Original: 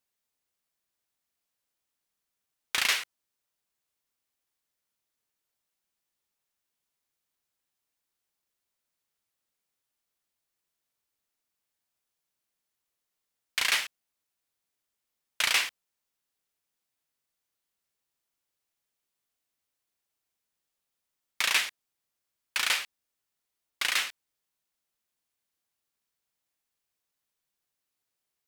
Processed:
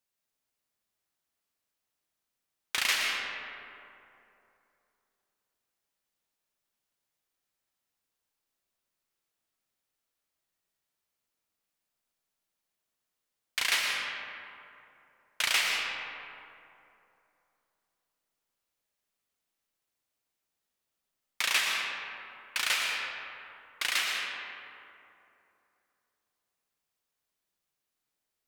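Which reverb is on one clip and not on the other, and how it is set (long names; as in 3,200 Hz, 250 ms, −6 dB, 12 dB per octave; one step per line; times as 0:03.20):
comb and all-pass reverb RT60 2.9 s, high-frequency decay 0.45×, pre-delay 75 ms, DRR −0.5 dB
level −2.5 dB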